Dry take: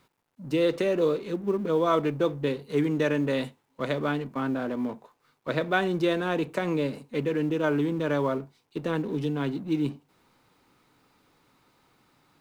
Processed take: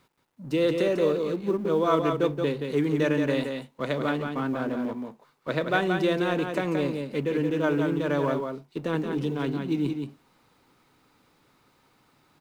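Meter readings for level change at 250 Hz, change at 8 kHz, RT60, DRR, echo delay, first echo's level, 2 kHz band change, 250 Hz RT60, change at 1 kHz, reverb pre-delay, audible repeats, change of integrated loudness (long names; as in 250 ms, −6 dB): +1.0 dB, can't be measured, no reverb audible, no reverb audible, 175 ms, −5.5 dB, +1.0 dB, no reverb audible, +1.0 dB, no reverb audible, 1, +1.0 dB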